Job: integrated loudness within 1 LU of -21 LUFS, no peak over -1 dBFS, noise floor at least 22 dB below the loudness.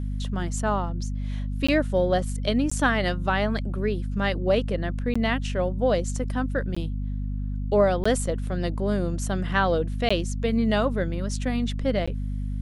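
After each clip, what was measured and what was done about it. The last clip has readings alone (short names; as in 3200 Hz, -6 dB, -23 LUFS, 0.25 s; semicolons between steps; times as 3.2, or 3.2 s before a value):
dropouts 7; longest dropout 15 ms; hum 50 Hz; harmonics up to 250 Hz; hum level -26 dBFS; loudness -26.0 LUFS; peak -8.5 dBFS; loudness target -21.0 LUFS
-> interpolate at 1.67/2.7/5.14/6.75/8.04/10.09/12.06, 15 ms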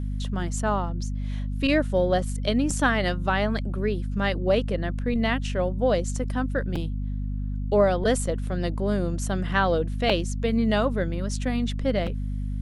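dropouts 0; hum 50 Hz; harmonics up to 250 Hz; hum level -26 dBFS
-> notches 50/100/150/200/250 Hz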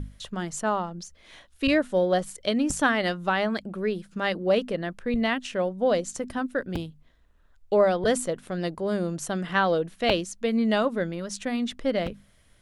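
hum none; loudness -26.5 LUFS; peak -9.5 dBFS; loudness target -21.0 LUFS
-> gain +5.5 dB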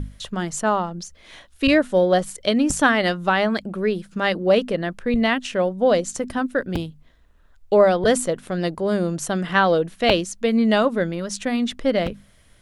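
loudness -21.0 LUFS; peak -4.0 dBFS; noise floor -54 dBFS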